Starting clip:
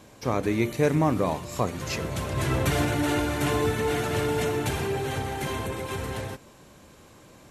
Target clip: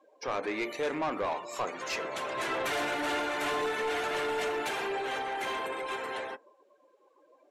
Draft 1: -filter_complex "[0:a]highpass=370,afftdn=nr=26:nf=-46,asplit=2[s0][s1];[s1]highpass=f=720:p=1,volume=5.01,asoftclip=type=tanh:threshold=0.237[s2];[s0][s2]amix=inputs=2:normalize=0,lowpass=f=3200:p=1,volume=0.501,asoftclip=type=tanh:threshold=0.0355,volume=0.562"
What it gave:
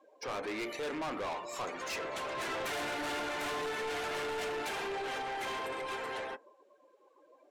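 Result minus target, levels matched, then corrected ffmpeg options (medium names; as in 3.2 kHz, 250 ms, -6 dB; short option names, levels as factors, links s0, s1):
saturation: distortion +8 dB
-filter_complex "[0:a]highpass=370,afftdn=nr=26:nf=-46,asplit=2[s0][s1];[s1]highpass=f=720:p=1,volume=5.01,asoftclip=type=tanh:threshold=0.237[s2];[s0][s2]amix=inputs=2:normalize=0,lowpass=f=3200:p=1,volume=0.501,asoftclip=type=tanh:threshold=0.1,volume=0.562"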